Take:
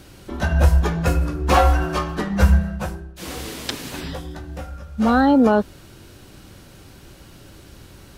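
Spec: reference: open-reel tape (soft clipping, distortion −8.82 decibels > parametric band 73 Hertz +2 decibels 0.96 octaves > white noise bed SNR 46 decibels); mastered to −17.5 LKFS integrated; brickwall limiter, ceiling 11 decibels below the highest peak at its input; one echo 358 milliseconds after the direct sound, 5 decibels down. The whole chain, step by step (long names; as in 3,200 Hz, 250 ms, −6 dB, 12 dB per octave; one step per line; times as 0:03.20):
brickwall limiter −13.5 dBFS
single-tap delay 358 ms −5 dB
soft clipping −23.5 dBFS
parametric band 73 Hz +2 dB 0.96 octaves
white noise bed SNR 46 dB
level +11 dB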